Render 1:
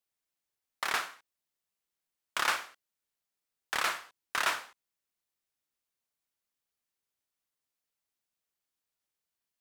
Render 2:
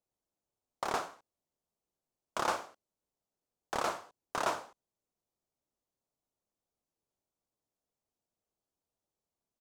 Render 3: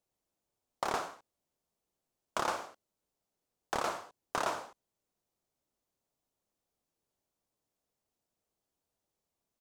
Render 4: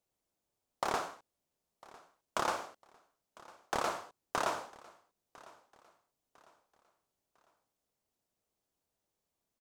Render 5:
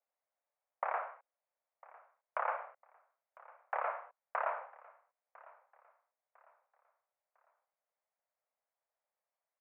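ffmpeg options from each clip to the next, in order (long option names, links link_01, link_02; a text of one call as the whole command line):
ffmpeg -i in.wav -af "firequalizer=gain_entry='entry(630,0);entry(1800,-19);entry(6400,-11);entry(12000,-18)':delay=0.05:min_phase=1,volume=7dB" out.wav
ffmpeg -i in.wav -af "acompressor=threshold=-32dB:ratio=6,volume=3.5dB" out.wav
ffmpeg -i in.wav -af "aecho=1:1:1002|2004|3006:0.0794|0.0294|0.0109" out.wav
ffmpeg -i in.wav -af "asuperpass=centerf=1100:order=12:qfactor=0.61,volume=-1.5dB" out.wav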